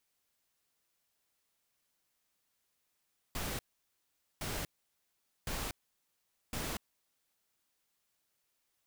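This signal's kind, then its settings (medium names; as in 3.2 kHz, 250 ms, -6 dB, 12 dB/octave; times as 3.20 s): noise bursts pink, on 0.24 s, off 0.82 s, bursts 4, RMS -38 dBFS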